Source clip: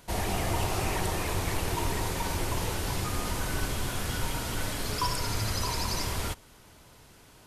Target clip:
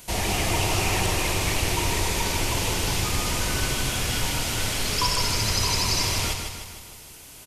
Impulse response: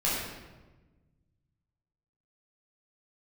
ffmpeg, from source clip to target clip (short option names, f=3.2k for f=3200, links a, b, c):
-filter_complex "[0:a]acrossover=split=6500[a][b];[b]acompressor=threshold=-52dB:ratio=4:attack=1:release=60[c];[a][c]amix=inputs=2:normalize=0,aexciter=amount=2.4:drive=4.6:freq=2.2k,aecho=1:1:154|308|462|616|770|924|1078:0.501|0.271|0.146|0.0789|0.0426|0.023|0.0124,volume=3dB"